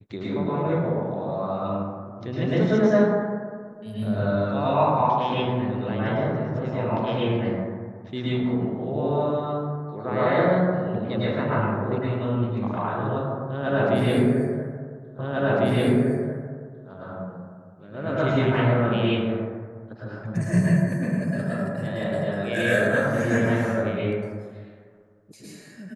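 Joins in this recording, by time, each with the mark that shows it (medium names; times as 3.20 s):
15.19 s: repeat of the last 1.7 s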